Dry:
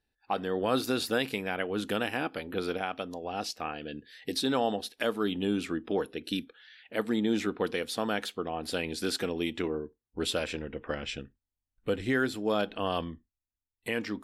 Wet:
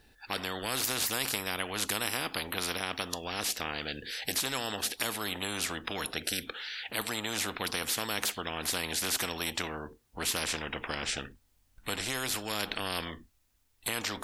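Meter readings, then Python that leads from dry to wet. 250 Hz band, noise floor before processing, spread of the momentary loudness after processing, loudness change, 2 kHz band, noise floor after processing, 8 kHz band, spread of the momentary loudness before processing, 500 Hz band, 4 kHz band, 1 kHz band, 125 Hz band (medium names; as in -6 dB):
-9.0 dB, under -85 dBFS, 7 LU, -0.5 dB, +1.5 dB, -70 dBFS, +11.0 dB, 9 LU, -8.5 dB, +4.0 dB, -2.0 dB, -3.0 dB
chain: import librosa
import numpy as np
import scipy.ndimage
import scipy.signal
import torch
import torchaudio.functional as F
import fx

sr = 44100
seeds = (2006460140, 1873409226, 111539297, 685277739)

y = fx.spectral_comp(x, sr, ratio=4.0)
y = F.gain(torch.from_numpy(y), 4.5).numpy()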